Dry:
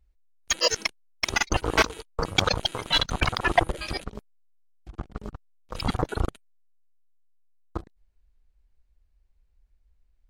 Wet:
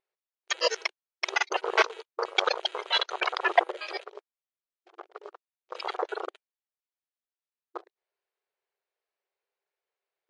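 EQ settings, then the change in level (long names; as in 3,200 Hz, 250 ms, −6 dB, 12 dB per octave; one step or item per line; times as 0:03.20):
linear-phase brick-wall high-pass 350 Hz
high-frequency loss of the air 140 metres
0.0 dB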